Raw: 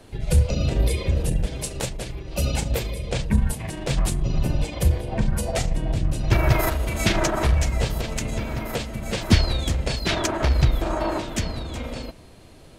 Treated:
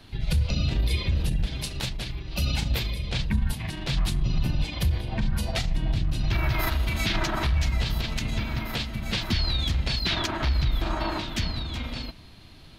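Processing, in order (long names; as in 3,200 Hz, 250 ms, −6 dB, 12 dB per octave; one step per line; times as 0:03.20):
graphic EQ with 10 bands 500 Hz −12 dB, 4,000 Hz +8 dB, 8,000 Hz −11 dB
brickwall limiter −16 dBFS, peak gain reduction 11.5 dB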